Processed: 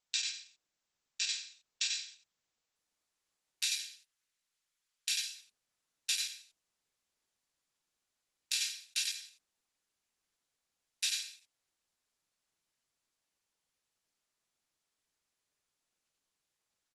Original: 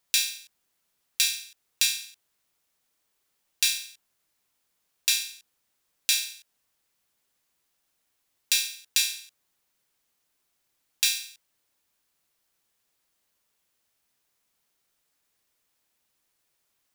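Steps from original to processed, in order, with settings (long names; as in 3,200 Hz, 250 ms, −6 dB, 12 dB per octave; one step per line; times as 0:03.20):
0:03.67–0:05.26: high-pass filter 1,200 Hz 24 dB per octave
single-tap delay 92 ms −5.5 dB
level −9 dB
Opus 12 kbit/s 48,000 Hz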